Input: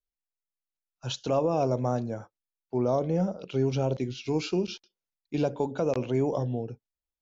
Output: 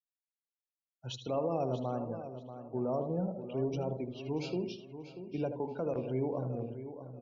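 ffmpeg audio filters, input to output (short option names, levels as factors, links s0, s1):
-filter_complex "[0:a]asplit=2[s0][s1];[s1]aecho=0:1:78|156|234|312|390:0.398|0.187|0.0879|0.0413|0.0194[s2];[s0][s2]amix=inputs=2:normalize=0,afftdn=nr=29:nf=-41,asplit=2[s3][s4];[s4]adelay=636,lowpass=f=4300:p=1,volume=0.282,asplit=2[s5][s6];[s6]adelay=636,lowpass=f=4300:p=1,volume=0.31,asplit=2[s7][s8];[s8]adelay=636,lowpass=f=4300:p=1,volume=0.31[s9];[s5][s7][s9]amix=inputs=3:normalize=0[s10];[s3][s10]amix=inputs=2:normalize=0,volume=0.398"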